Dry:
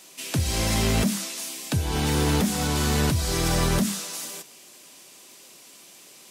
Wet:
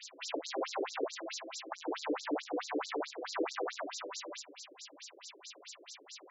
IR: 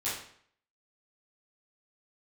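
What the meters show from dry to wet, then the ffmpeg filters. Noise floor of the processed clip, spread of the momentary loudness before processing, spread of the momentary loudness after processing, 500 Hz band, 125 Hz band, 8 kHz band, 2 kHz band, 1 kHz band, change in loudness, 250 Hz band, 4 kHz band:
-59 dBFS, 9 LU, 13 LU, -7.5 dB, under -40 dB, -18.0 dB, -11.5 dB, -8.5 dB, -15.0 dB, -15.0 dB, -14.0 dB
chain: -filter_complex "[0:a]equalizer=f=280:t=o:w=0.22:g=9,bandreject=f=60:t=h:w=6,bandreject=f=120:t=h:w=6,bandreject=f=180:t=h:w=6,bandreject=f=240:t=h:w=6,bandreject=f=300:t=h:w=6,bandreject=f=360:t=h:w=6,acrossover=split=170|1100|1900[a][b][c][d];[d]acompressor=threshold=-40dB:ratio=12[e];[a][b][c][e]amix=inputs=4:normalize=0,asoftclip=type=tanh:threshold=-28dB,afftfilt=real='re*between(b*sr/1024,390*pow(5500/390,0.5+0.5*sin(2*PI*4.6*pts/sr))/1.41,390*pow(5500/390,0.5+0.5*sin(2*PI*4.6*pts/sr))*1.41)':imag='im*between(b*sr/1024,390*pow(5500/390,0.5+0.5*sin(2*PI*4.6*pts/sr))/1.41,390*pow(5500/390,0.5+0.5*sin(2*PI*4.6*pts/sr))*1.41)':win_size=1024:overlap=0.75,volume=6dB"

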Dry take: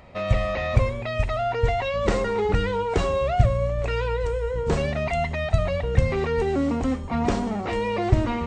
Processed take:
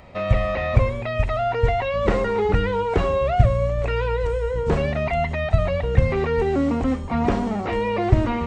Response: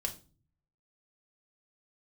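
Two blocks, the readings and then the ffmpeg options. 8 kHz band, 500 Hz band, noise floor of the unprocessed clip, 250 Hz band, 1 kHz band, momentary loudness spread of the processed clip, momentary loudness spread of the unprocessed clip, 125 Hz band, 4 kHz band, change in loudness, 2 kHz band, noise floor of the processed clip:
n/a, +2.5 dB, -31 dBFS, +2.5 dB, +2.5 dB, 4 LU, 4 LU, +2.5 dB, -0.5 dB, +2.5 dB, +1.5 dB, -28 dBFS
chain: -filter_complex "[0:a]acrossover=split=3200[a][b];[b]acompressor=threshold=-51dB:ratio=4:attack=1:release=60[c];[a][c]amix=inputs=2:normalize=0,volume=2.5dB"

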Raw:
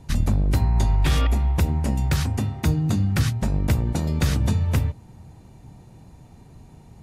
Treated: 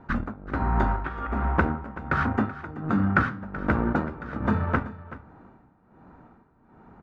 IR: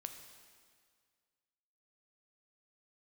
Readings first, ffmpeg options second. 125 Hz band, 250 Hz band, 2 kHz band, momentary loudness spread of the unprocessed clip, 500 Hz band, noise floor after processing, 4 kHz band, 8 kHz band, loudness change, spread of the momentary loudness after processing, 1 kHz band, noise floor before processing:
-9.0 dB, -0.5 dB, +6.0 dB, 4 LU, +1.5 dB, -60 dBFS, under -15 dB, under -25 dB, -4.5 dB, 10 LU, +6.5 dB, -48 dBFS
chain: -filter_complex "[0:a]tremolo=f=1.3:d=0.86,lowshelf=f=170:t=q:w=1.5:g=-8.5,asplit=2[a][b];[b]acrusher=bits=4:mix=0:aa=0.5,volume=-7dB[c];[a][c]amix=inputs=2:normalize=0,flanger=delay=8.6:depth=8.8:regen=-70:speed=0.46:shape=sinusoidal,lowpass=f=1.4k:t=q:w=4.9,aecho=1:1:380:0.158,volume=4.5dB"

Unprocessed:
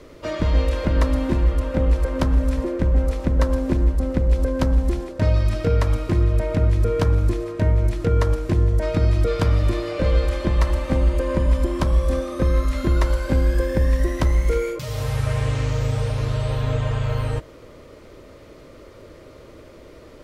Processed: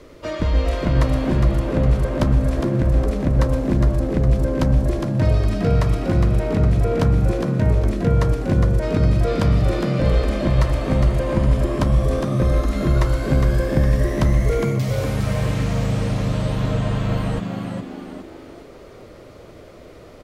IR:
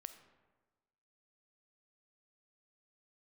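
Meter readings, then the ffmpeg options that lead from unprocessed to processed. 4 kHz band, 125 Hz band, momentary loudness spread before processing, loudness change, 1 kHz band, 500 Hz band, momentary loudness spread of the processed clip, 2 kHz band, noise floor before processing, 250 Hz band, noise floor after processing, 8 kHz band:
+1.5 dB, +2.5 dB, 4 LU, +2.0 dB, +2.5 dB, +1.5 dB, 4 LU, +1.5 dB, -44 dBFS, +4.0 dB, -42 dBFS, n/a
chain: -filter_complex "[0:a]asplit=6[a][b][c][d][e][f];[b]adelay=410,afreqshift=73,volume=-5.5dB[g];[c]adelay=820,afreqshift=146,volume=-12.8dB[h];[d]adelay=1230,afreqshift=219,volume=-20.2dB[i];[e]adelay=1640,afreqshift=292,volume=-27.5dB[j];[f]adelay=2050,afreqshift=365,volume=-34.8dB[k];[a][g][h][i][j][k]amix=inputs=6:normalize=0"

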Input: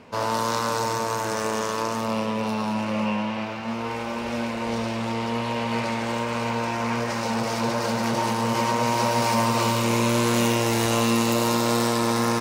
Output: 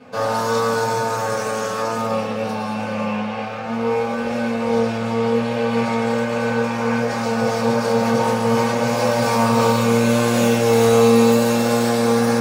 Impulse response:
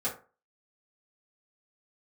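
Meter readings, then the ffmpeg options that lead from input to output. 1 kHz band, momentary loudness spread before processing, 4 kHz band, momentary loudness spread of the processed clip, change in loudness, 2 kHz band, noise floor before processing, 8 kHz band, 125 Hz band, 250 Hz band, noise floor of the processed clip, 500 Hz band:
+3.0 dB, 6 LU, +0.5 dB, 8 LU, +5.5 dB, +4.0 dB, -30 dBFS, +1.0 dB, +4.0 dB, +5.5 dB, -25 dBFS, +9.0 dB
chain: -filter_complex "[1:a]atrim=start_sample=2205[a];[0:a][a]afir=irnorm=-1:irlink=0,volume=-1.5dB"

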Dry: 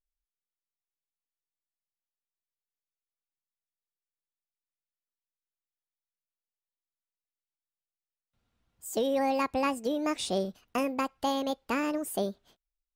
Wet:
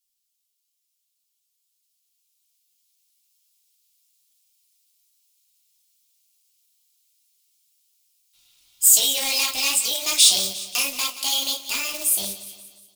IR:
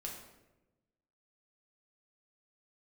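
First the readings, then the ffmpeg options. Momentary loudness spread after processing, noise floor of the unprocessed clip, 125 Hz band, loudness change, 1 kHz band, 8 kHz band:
10 LU, under -85 dBFS, n/a, +12.0 dB, -4.5 dB, +25.0 dB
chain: -filter_complex "[0:a]highpass=f=86:p=1,asubboost=boost=3.5:cutoff=130,asplit=2[a][b];[b]acompressor=threshold=-43dB:ratio=6,volume=-0.5dB[c];[a][c]amix=inputs=2:normalize=0[d];[1:a]atrim=start_sample=2205,afade=t=out:st=0.16:d=0.01,atrim=end_sample=7497,asetrate=83790,aresample=44100[e];[d][e]afir=irnorm=-1:irlink=0,flanger=delay=8.3:depth=8:regen=-41:speed=1.1:shape=sinusoidal,acrossover=split=740[f][g];[g]dynaudnorm=f=720:g=7:m=10dB[h];[f][h]amix=inputs=2:normalize=0,asoftclip=type=hard:threshold=-32dB,acrusher=bits=4:mode=log:mix=0:aa=0.000001,aexciter=amount=11.8:drive=3.6:freq=2.5k,lowshelf=f=340:g=-5.5,aecho=1:1:177|354|531|708|885:0.2|0.0998|0.0499|0.0249|0.0125,tremolo=f=280:d=0.519,volume=5.5dB"

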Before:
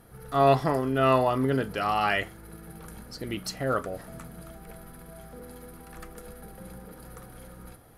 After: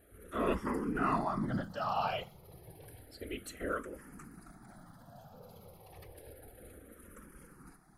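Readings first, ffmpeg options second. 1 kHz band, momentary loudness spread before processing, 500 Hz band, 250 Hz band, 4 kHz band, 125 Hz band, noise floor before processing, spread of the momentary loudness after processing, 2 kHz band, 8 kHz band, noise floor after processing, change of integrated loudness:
-9.5 dB, 23 LU, -12.5 dB, -7.0 dB, -11.0 dB, -11.5 dB, -48 dBFS, 22 LU, -10.5 dB, -9.5 dB, -59 dBFS, -10.0 dB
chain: -filter_complex "[0:a]afftfilt=real='hypot(re,im)*cos(2*PI*random(0))':imag='hypot(re,im)*sin(2*PI*random(1))':win_size=512:overlap=0.75,asplit=2[a][b];[b]afreqshift=-0.3[c];[a][c]amix=inputs=2:normalize=1"

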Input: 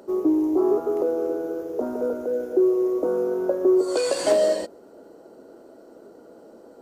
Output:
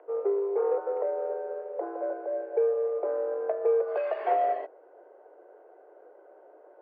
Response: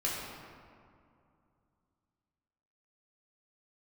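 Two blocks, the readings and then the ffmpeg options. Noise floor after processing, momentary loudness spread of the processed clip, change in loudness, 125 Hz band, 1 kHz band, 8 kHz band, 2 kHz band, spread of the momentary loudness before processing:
-55 dBFS, 9 LU, -6.5 dB, n/a, +4.0 dB, under -40 dB, -5.5 dB, 9 LU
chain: -af "aeval=exprs='0.422*(cos(1*acos(clip(val(0)/0.422,-1,1)))-cos(1*PI/2))+0.0211*(cos(6*acos(clip(val(0)/0.422,-1,1)))-cos(6*PI/2))+0.0168*(cos(8*acos(clip(val(0)/0.422,-1,1)))-cos(8*PI/2))':c=same,highpass=f=260:t=q:w=0.5412,highpass=f=260:t=q:w=1.307,lowpass=f=2.4k:t=q:w=0.5176,lowpass=f=2.4k:t=q:w=0.7071,lowpass=f=2.4k:t=q:w=1.932,afreqshift=88,volume=-6dB"

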